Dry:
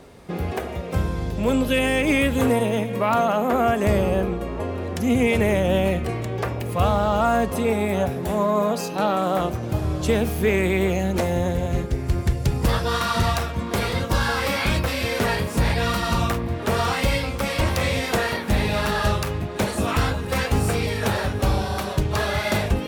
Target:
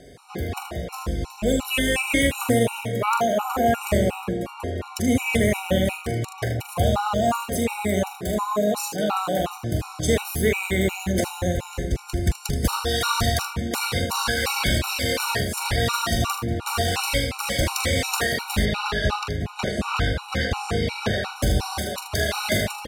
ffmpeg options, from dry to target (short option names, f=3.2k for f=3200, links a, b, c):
-filter_complex "[0:a]aemphasis=mode=production:type=75fm,adynamicsmooth=sensitivity=4:basefreq=7.1k,aecho=1:1:43|78:0.398|0.376,asettb=1/sr,asplit=3[a][b][c];[a]atrim=end=18.654[d];[b]atrim=start=18.65:end=21.36,asetpts=PTS-STARTPTS,afade=t=in:d=0.004:c=qsin,afade=t=out:st=2.706:d=0.004:c=qsin,acrossover=split=5100[e][f];[f]acompressor=threshold=-49dB:ratio=4:attack=1:release=60[g];[e][g]amix=inputs=2:normalize=0[h];[c]atrim=start=21.356[i];[d][h]acrossfade=d=0.004:c1=hsin:c2=qsin[j];[j][i]acrossfade=d=0.004:c1=qsin:c2=hsin,afftfilt=real='re*gt(sin(2*PI*2.8*pts/sr)*(1-2*mod(floor(b*sr/1024/750),2)),0)':imag='im*gt(sin(2*PI*2.8*pts/sr)*(1-2*mod(floor(b*sr/1024/750),2)),0)':win_size=1024:overlap=0.75"